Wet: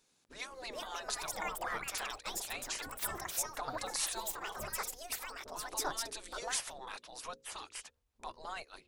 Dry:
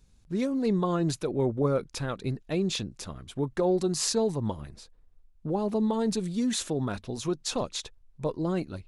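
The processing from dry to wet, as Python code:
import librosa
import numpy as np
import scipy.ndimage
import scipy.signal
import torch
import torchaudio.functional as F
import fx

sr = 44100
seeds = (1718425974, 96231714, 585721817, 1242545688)

y = fx.echo_pitch(x, sr, ms=502, semitones=6, count=2, db_per_echo=-3.0)
y = fx.spec_gate(y, sr, threshold_db=-15, keep='weak')
y = fx.peak_eq(y, sr, hz=140.0, db=-8.5, octaves=2.6)
y = fx.hum_notches(y, sr, base_hz=60, count=9)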